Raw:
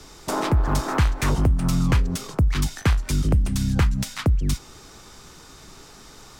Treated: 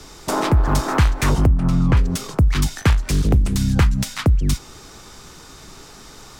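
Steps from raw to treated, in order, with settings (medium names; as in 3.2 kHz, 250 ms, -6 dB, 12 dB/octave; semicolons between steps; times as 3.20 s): 1.46–1.97 s: low-pass 1.5 kHz 6 dB/octave; 2.89–3.57 s: loudspeaker Doppler distortion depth 1 ms; trim +4 dB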